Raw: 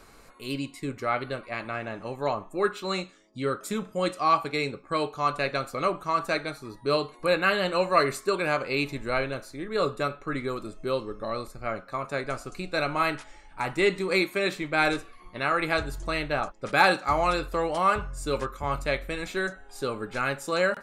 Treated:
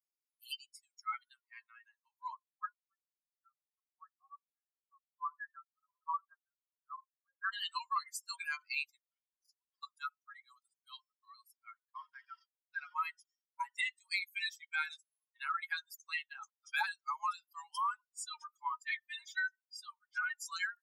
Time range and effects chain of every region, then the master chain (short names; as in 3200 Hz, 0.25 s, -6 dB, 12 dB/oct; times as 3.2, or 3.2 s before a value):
2.36–7.53 rippled Chebyshev low-pass 1800 Hz, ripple 3 dB + photocell phaser 1.4 Hz
9.01–9.83 HPF 61 Hz 6 dB/oct + compressor 10:1, threshold -37 dBFS + core saturation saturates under 1500 Hz
11.91–12.95 delta modulation 32 kbps, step -26.5 dBFS + LPF 2300 Hz + gate with hold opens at -22 dBFS, closes at -26 dBFS
18.22–20.46 high shelf 5500 Hz -9 dB + comb 3.3 ms, depth 96%
whole clip: per-bin expansion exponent 3; Chebyshev high-pass 850 Hz, order 10; compressor 6:1, threshold -42 dBFS; gain +8 dB